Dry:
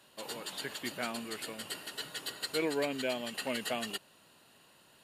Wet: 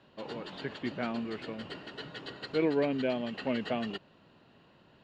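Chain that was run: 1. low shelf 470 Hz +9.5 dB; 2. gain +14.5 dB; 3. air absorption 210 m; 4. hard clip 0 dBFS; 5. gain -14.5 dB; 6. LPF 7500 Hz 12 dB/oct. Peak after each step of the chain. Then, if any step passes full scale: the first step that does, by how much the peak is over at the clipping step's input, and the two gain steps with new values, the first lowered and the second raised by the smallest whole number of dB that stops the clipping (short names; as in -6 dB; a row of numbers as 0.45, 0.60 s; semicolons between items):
-16.5, -2.0, -3.0, -3.0, -17.5, -17.5 dBFS; no overload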